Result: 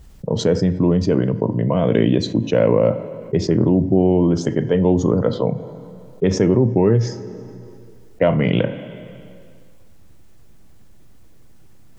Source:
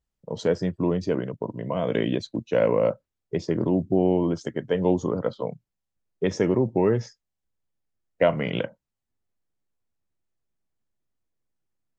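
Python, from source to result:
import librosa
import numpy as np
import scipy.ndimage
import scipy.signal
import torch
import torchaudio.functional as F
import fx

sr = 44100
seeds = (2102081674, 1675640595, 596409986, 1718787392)

y = fx.low_shelf(x, sr, hz=370.0, db=9.0)
y = fx.rev_double_slope(y, sr, seeds[0], early_s=0.4, late_s=1.6, knee_db=-17, drr_db=14.0)
y = fx.env_flatten(y, sr, amount_pct=50)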